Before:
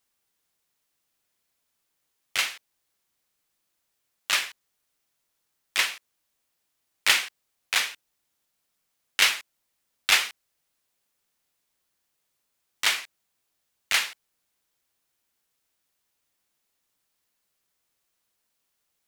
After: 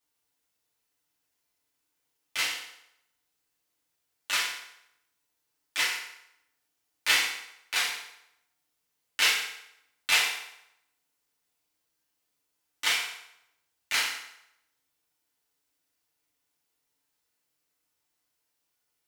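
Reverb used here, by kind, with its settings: FDN reverb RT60 0.8 s, low-frequency decay 0.8×, high-frequency decay 0.85×, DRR -5.5 dB; gain -8.5 dB

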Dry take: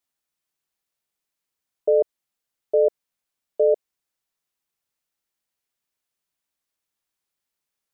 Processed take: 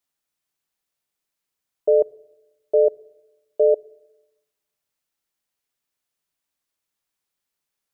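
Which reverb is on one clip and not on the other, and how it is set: shoebox room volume 3400 m³, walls furnished, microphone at 0.35 m; gain +1 dB

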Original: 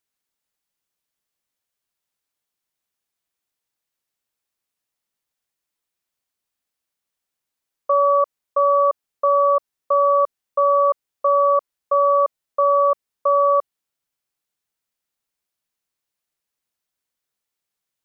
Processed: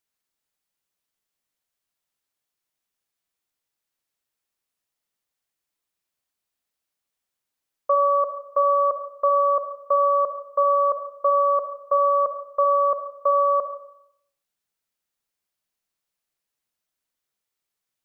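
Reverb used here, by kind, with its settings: digital reverb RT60 0.73 s, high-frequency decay 0.75×, pre-delay 15 ms, DRR 8 dB; gain -1.5 dB

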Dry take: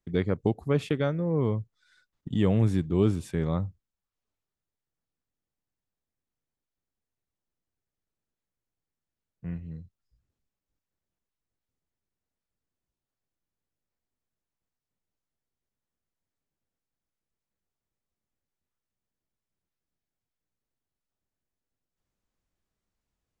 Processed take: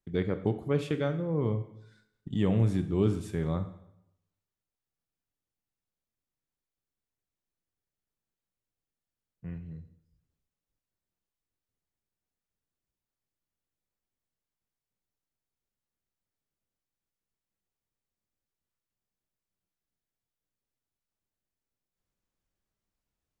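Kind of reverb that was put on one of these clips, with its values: plate-style reverb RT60 0.78 s, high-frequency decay 0.9×, DRR 8.5 dB; gain -3.5 dB

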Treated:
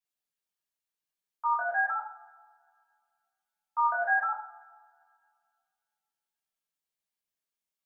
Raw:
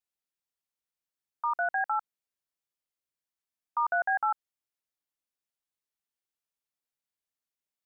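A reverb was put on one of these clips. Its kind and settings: two-slope reverb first 0.38 s, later 2.2 s, from -26 dB, DRR -6 dB; gain -7 dB

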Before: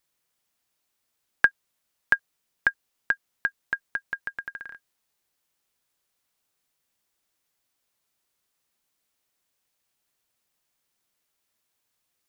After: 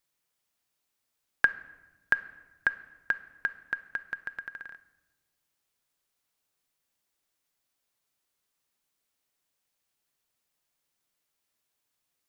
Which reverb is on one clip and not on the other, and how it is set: shoebox room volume 720 m³, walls mixed, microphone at 0.3 m; gain -3.5 dB

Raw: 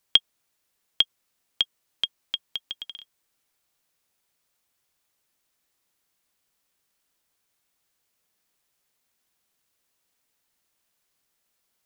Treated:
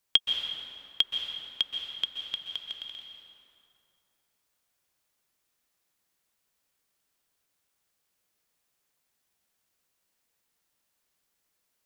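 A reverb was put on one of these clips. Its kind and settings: plate-style reverb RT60 2.7 s, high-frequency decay 0.6×, pre-delay 0.115 s, DRR 2 dB; gain -4 dB

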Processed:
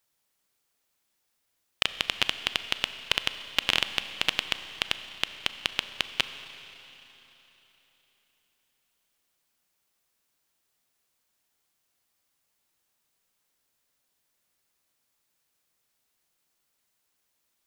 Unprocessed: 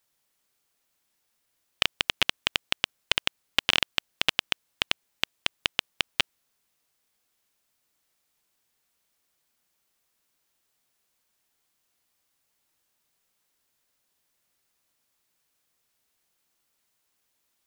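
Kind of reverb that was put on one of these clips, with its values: Schroeder reverb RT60 3.7 s, combs from 29 ms, DRR 10.5 dB; gain -1.5 dB

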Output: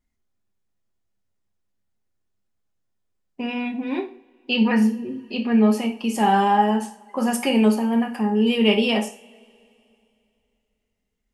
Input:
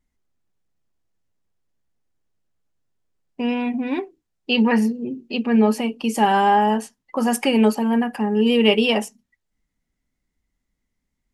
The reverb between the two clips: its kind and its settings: two-slope reverb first 0.38 s, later 2.9 s, from -28 dB, DRR 3 dB; gain -3.5 dB

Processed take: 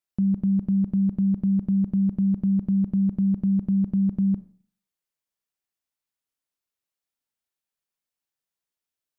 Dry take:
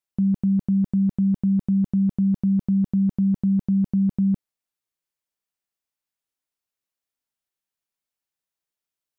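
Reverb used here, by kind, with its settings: Schroeder reverb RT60 0.49 s, combs from 29 ms, DRR 15 dB; gain -1.5 dB

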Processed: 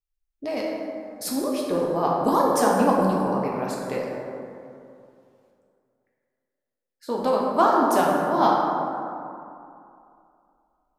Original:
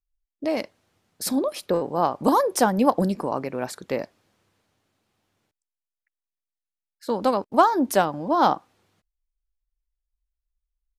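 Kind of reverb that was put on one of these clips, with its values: plate-style reverb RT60 2.6 s, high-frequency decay 0.4×, DRR -3.5 dB; gain -4.5 dB

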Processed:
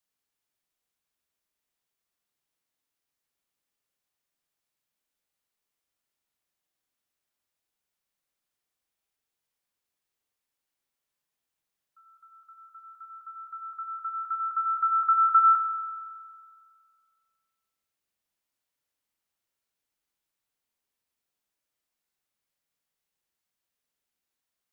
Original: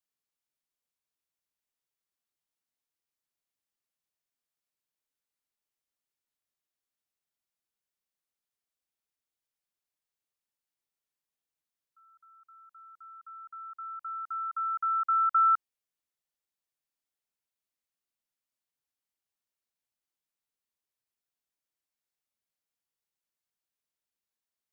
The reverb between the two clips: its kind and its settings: spring tank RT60 2 s, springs 44 ms, chirp 45 ms, DRR 3.5 dB; gain +4.5 dB

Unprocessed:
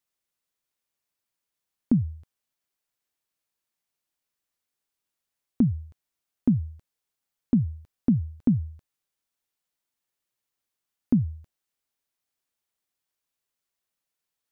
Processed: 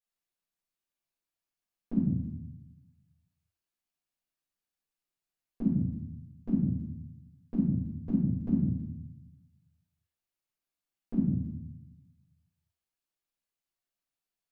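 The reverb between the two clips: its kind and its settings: shoebox room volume 220 m³, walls mixed, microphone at 5 m; gain -19.5 dB

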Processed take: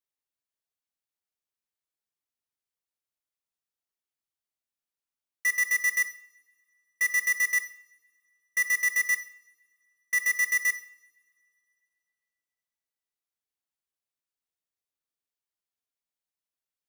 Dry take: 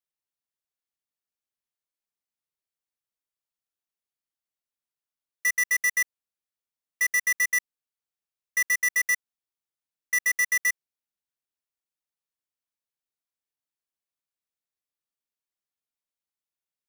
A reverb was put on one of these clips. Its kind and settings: two-slope reverb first 0.58 s, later 2.7 s, from -26 dB, DRR 10.5 dB; gain -2.5 dB

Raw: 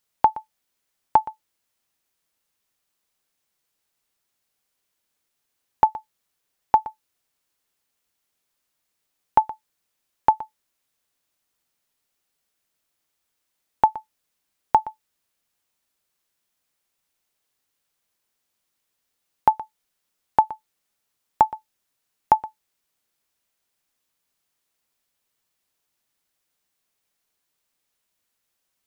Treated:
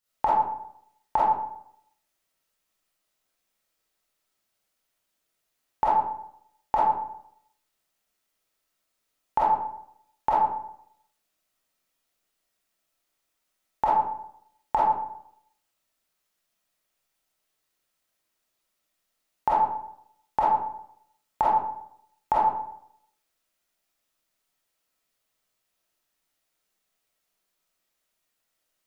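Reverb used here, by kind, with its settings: digital reverb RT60 0.72 s, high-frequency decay 0.55×, pre-delay 5 ms, DRR -8.5 dB; gain -8.5 dB

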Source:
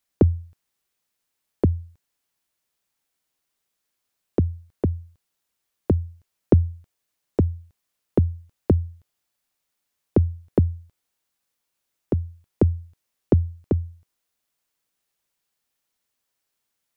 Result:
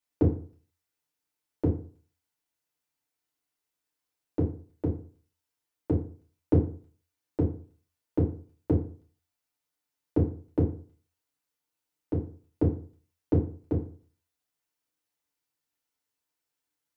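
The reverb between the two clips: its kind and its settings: FDN reverb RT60 0.43 s, low-frequency decay 1×, high-frequency decay 0.7×, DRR -5 dB; gain -12.5 dB

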